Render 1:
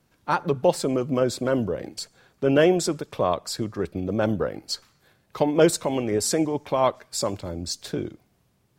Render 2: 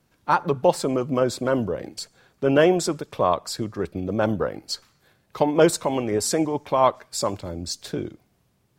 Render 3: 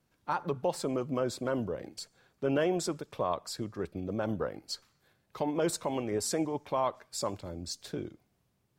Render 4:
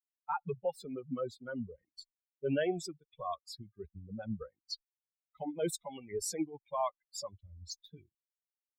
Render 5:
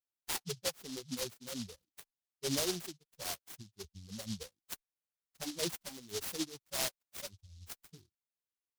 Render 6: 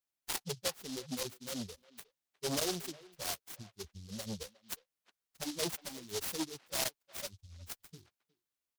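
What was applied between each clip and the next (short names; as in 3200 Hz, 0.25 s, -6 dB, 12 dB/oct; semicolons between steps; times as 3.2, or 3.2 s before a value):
dynamic EQ 1000 Hz, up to +5 dB, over -35 dBFS, Q 1.4
limiter -11 dBFS, peak gain reduction 7 dB; gain -8.5 dB
per-bin expansion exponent 3; gain +1 dB
noise-modulated delay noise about 4600 Hz, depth 0.3 ms; gain -2.5 dB
speakerphone echo 0.36 s, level -20 dB; core saturation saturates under 720 Hz; gain +2.5 dB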